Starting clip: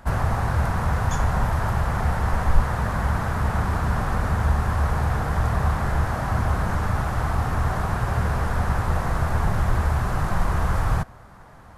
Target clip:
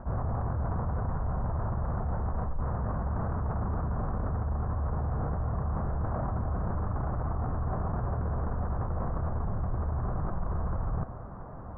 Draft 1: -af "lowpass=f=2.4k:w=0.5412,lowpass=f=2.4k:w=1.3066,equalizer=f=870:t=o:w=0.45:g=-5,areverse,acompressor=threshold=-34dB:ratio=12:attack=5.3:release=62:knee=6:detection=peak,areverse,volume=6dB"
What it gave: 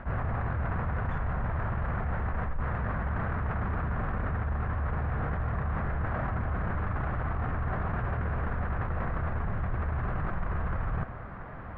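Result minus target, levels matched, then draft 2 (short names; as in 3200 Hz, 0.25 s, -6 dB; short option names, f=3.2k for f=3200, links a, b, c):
2000 Hz band +12.0 dB
-af "lowpass=f=1.1k:w=0.5412,lowpass=f=1.1k:w=1.3066,equalizer=f=870:t=o:w=0.45:g=-5,areverse,acompressor=threshold=-34dB:ratio=12:attack=5.3:release=62:knee=6:detection=peak,areverse,volume=6dB"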